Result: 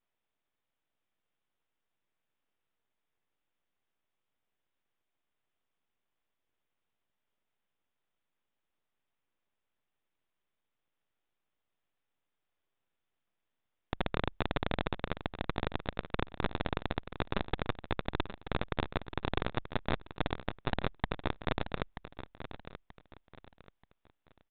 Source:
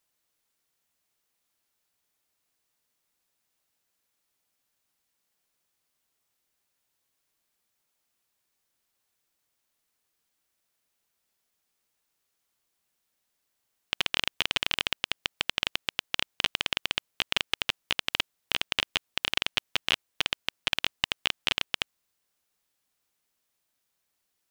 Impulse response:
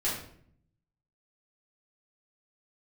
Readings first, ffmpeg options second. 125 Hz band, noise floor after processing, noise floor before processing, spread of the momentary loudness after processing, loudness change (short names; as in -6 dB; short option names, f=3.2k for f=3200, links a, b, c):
+11.0 dB, -85 dBFS, -79 dBFS, 9 LU, -8.5 dB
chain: -af "tiltshelf=f=970:g=6,afreqshift=-20,aresample=16000,aeval=exprs='abs(val(0))':c=same,aresample=44100,aecho=1:1:932|1864|2796:0.251|0.0779|0.0241,aresample=8000,aresample=44100"